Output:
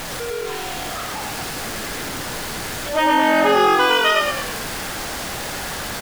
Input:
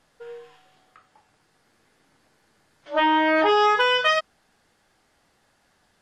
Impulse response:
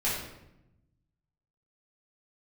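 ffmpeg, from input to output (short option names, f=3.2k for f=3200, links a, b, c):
-filter_complex "[0:a]aeval=exprs='val(0)+0.5*0.0631*sgn(val(0))':c=same,asplit=7[a][b][c][d][e][f][g];[b]adelay=106,afreqshift=-44,volume=-3.5dB[h];[c]adelay=212,afreqshift=-88,volume=-9.7dB[i];[d]adelay=318,afreqshift=-132,volume=-15.9dB[j];[e]adelay=424,afreqshift=-176,volume=-22.1dB[k];[f]adelay=530,afreqshift=-220,volume=-28.3dB[l];[g]adelay=636,afreqshift=-264,volume=-34.5dB[m];[a][h][i][j][k][l][m]amix=inputs=7:normalize=0"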